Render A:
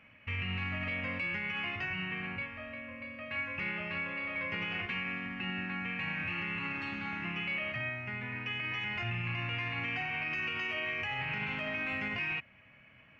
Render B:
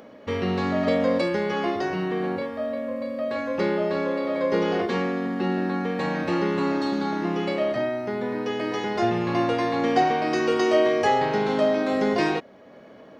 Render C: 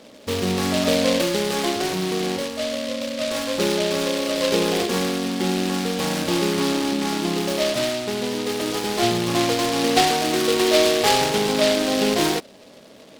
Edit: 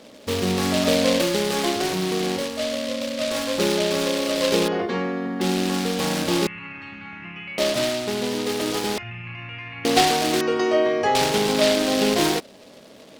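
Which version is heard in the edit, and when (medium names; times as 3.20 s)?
C
4.68–5.41 s: from B
6.47–7.58 s: from A
8.98–9.85 s: from A
10.41–11.15 s: from B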